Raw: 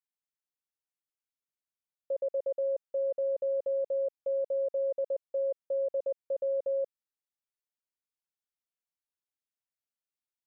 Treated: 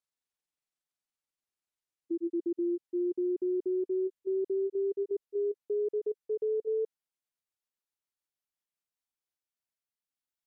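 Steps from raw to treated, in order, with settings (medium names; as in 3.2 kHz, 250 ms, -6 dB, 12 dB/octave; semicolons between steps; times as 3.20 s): pitch bend over the whole clip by -10.5 st ending unshifted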